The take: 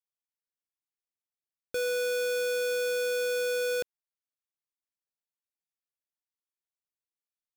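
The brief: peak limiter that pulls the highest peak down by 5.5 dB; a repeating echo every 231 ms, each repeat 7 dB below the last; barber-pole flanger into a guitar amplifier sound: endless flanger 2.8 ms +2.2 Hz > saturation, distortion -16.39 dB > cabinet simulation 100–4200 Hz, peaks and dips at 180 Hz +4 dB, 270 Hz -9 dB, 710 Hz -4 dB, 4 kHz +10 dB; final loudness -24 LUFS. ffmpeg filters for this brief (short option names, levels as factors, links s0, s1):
-filter_complex "[0:a]alimiter=level_in=3.35:limit=0.0631:level=0:latency=1,volume=0.299,aecho=1:1:231|462|693|924|1155:0.447|0.201|0.0905|0.0407|0.0183,asplit=2[s0][s1];[s1]adelay=2.8,afreqshift=2.2[s2];[s0][s2]amix=inputs=2:normalize=1,asoftclip=threshold=0.0224,highpass=100,equalizer=f=180:t=q:w=4:g=4,equalizer=f=270:t=q:w=4:g=-9,equalizer=f=710:t=q:w=4:g=-4,equalizer=f=4000:t=q:w=4:g=10,lowpass=f=4200:w=0.5412,lowpass=f=4200:w=1.3066,volume=6.31"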